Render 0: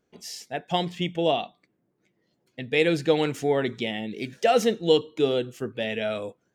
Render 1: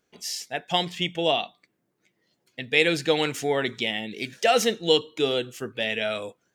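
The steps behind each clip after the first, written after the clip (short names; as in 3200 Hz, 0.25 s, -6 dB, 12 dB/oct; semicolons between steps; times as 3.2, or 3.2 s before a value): tilt shelf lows -5 dB; gain +1.5 dB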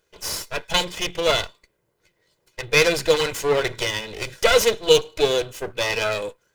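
minimum comb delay 2 ms; gain +6 dB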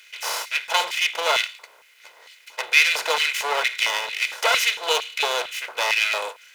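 per-bin compression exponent 0.6; LFO high-pass square 2.2 Hz 870–2200 Hz; gain -5 dB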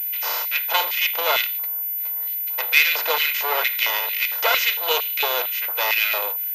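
pulse-width modulation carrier 14000 Hz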